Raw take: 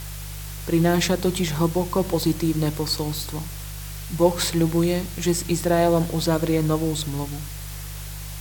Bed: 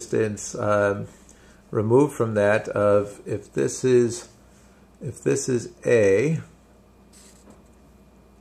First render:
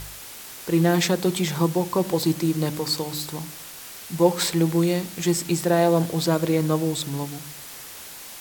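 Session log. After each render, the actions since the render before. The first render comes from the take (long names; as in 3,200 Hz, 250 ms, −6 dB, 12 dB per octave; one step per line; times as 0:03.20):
hum removal 50 Hz, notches 6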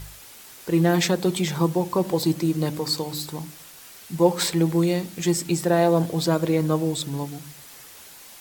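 broadband denoise 6 dB, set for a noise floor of −40 dBFS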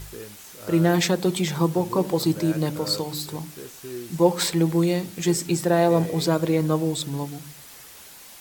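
mix in bed −17.5 dB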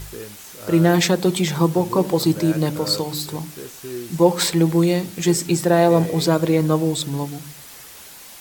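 level +4 dB
brickwall limiter −3 dBFS, peak gain reduction 1 dB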